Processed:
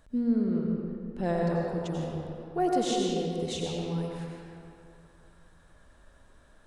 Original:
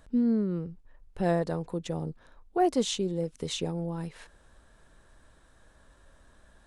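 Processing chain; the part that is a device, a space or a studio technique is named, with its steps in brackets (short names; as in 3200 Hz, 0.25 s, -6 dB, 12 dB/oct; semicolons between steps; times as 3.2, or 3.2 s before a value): stairwell (reverb RT60 2.5 s, pre-delay 81 ms, DRR -2 dB); 0.47–1.88 LPF 8000 Hz 12 dB/oct; gain -3.5 dB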